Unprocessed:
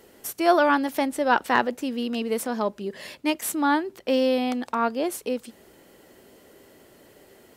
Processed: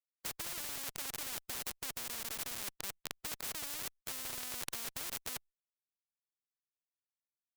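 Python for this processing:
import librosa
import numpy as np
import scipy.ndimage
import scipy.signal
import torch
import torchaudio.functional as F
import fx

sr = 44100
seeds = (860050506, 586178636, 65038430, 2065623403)

y = fx.schmitt(x, sr, flips_db=-28.0)
y = fx.spectral_comp(y, sr, ratio=10.0)
y = y * librosa.db_to_amplitude(1.5)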